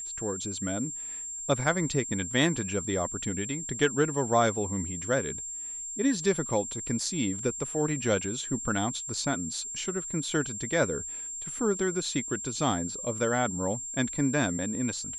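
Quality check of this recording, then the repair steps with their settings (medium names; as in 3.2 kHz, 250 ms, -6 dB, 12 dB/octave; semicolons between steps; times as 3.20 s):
whine 7.4 kHz -35 dBFS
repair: band-stop 7.4 kHz, Q 30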